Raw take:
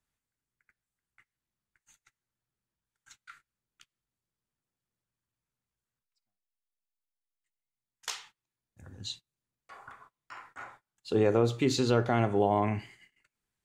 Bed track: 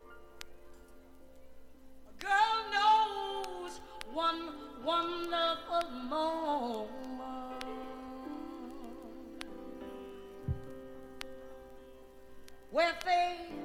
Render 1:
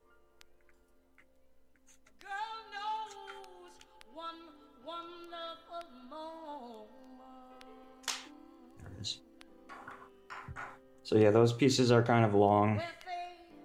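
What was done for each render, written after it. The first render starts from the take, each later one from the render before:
mix in bed track −12 dB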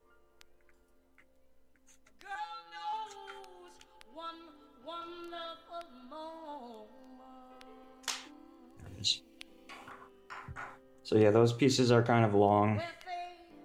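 0:02.35–0:02.93: phases set to zero 169 Hz
0:04.98–0:05.45: double-tracking delay 35 ms −2.5 dB
0:08.86–0:09.90: high shelf with overshoot 2,000 Hz +6.5 dB, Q 3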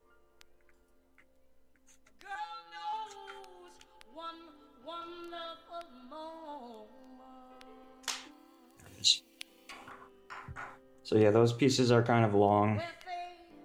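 0:08.31–0:09.72: spectral tilt +2.5 dB per octave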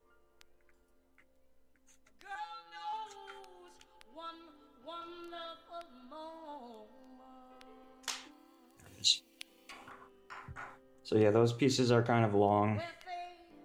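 level −2.5 dB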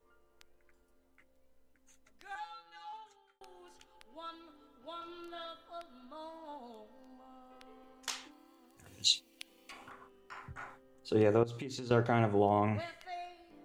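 0:02.30–0:03.41: fade out
0:11.43–0:11.91: downward compressor 16 to 1, threshold −37 dBFS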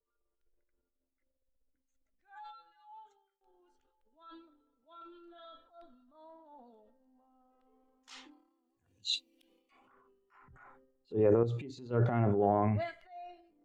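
transient designer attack −9 dB, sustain +9 dB
every bin expanded away from the loudest bin 1.5 to 1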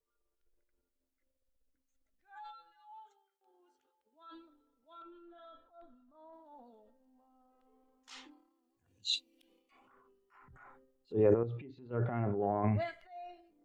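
0:02.93–0:04.33: high-pass filter 470 Hz → 120 Hz
0:05.02–0:06.33: high-frequency loss of the air 360 metres
0:11.34–0:12.64: transistor ladder low-pass 3,300 Hz, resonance 20%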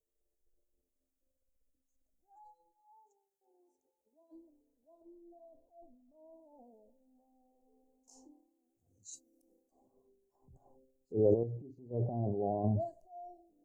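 elliptic band-stop filter 700–6,400 Hz, stop band 40 dB

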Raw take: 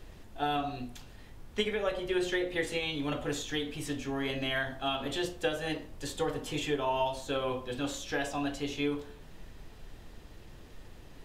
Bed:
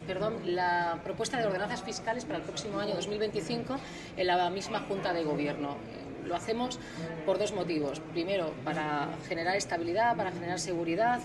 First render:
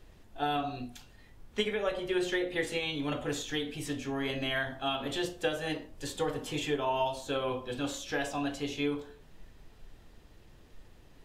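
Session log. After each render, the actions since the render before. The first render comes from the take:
noise reduction from a noise print 6 dB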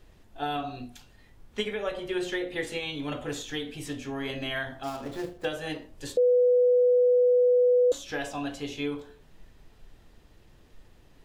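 0:04.83–0:05.45: running median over 15 samples
0:06.17–0:07.92: beep over 494 Hz −17.5 dBFS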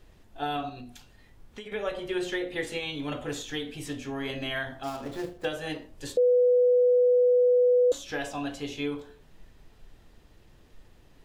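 0:00.69–0:01.72: downward compressor, threshold −38 dBFS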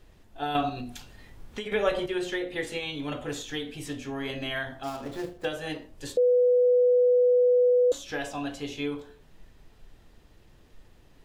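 0:00.55–0:02.06: clip gain +6.5 dB
0:06.65–0:07.70: parametric band 1,300 Hz +5 dB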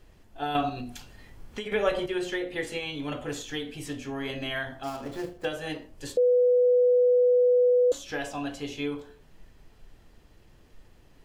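notch filter 3,700 Hz, Q 17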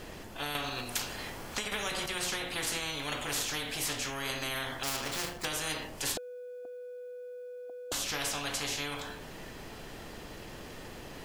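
downward compressor, threshold −23 dBFS, peak gain reduction 5 dB
every bin compressed towards the loudest bin 4 to 1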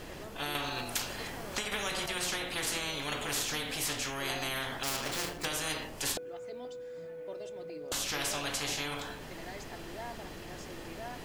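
mix in bed −16.5 dB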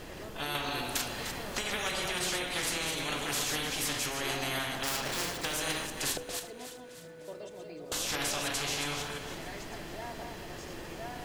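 delay that plays each chunk backwards 164 ms, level −5 dB
echo with a time of its own for lows and highs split 960 Hz, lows 136 ms, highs 301 ms, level −12 dB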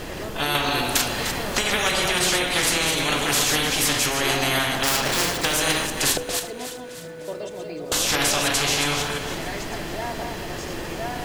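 level +11.5 dB

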